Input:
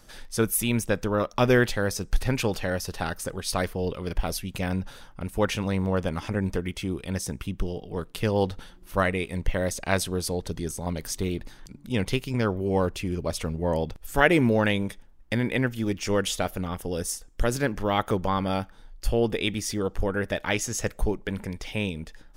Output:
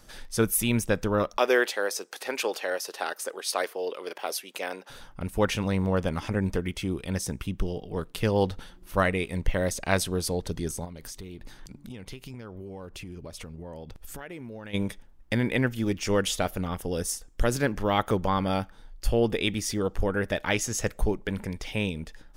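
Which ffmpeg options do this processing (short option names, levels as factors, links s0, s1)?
-filter_complex "[0:a]asettb=1/sr,asplit=3[s0][s1][s2];[s0]atrim=end=1.374[s3];[s1]atrim=start=1.37:end=4.9,asetpts=PTS-STARTPTS,afade=t=in:d=0.004:c=qsin,afade=t=out:st=3.526:d=0.004:c=qsin,highpass=f=370:w=0.5412,highpass=f=370:w=1.3066[s4];[s2]atrim=start=4.896[s5];[s3][s4]acrossfade=d=0.004:c1=hsin:c2=qsin[s6];[s6][s5]acrossfade=d=0.004:c1=qsin:c2=hsin,asplit=3[s7][s8][s9];[s7]afade=t=out:st=10.84:d=0.02[s10];[s8]acompressor=threshold=0.0158:ratio=12:attack=3.2:release=140:knee=1:detection=peak,afade=t=in:st=10.84:d=0.02,afade=t=out:st=14.73:d=0.02[s11];[s9]afade=t=in:st=14.73:d=0.02[s12];[s10][s11][s12]amix=inputs=3:normalize=0"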